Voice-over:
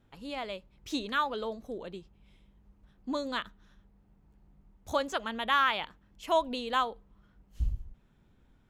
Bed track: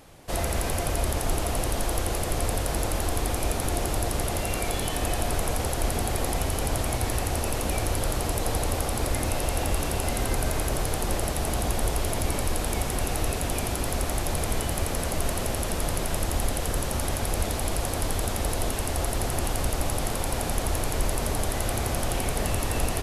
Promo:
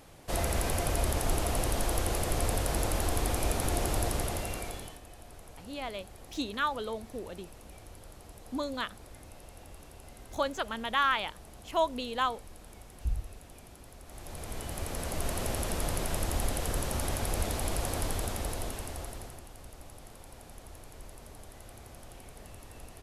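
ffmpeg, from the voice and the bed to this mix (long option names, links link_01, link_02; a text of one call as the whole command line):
ffmpeg -i stem1.wav -i stem2.wav -filter_complex "[0:a]adelay=5450,volume=-1dB[link_01];[1:a]volume=16dB,afade=type=out:start_time=4.04:duration=0.97:silence=0.0944061,afade=type=in:start_time=14.04:duration=1.45:silence=0.112202,afade=type=out:start_time=17.97:duration=1.47:silence=0.133352[link_02];[link_01][link_02]amix=inputs=2:normalize=0" out.wav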